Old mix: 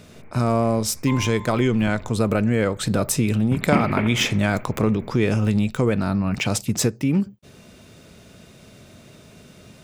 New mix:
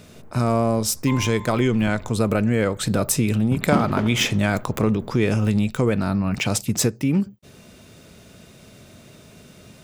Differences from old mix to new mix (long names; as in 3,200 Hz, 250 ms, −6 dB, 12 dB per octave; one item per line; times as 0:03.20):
first sound: remove low-pass with resonance 2,300 Hz, resonance Q 8.9
master: add high-shelf EQ 9,700 Hz +4.5 dB